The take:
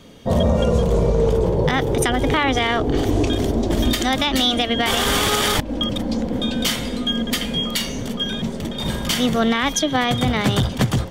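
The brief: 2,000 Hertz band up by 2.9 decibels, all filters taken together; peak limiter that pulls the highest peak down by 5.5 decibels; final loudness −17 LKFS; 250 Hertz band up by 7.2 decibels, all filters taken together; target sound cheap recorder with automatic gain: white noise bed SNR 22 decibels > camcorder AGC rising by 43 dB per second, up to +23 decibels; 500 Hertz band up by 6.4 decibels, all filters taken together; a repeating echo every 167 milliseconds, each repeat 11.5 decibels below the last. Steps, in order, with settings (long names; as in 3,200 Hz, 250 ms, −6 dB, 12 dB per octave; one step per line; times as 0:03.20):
parametric band 250 Hz +7 dB
parametric band 500 Hz +5.5 dB
parametric band 2,000 Hz +3 dB
brickwall limiter −7 dBFS
repeating echo 167 ms, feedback 27%, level −11.5 dB
white noise bed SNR 22 dB
camcorder AGC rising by 43 dB per second, up to +23 dB
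level −1 dB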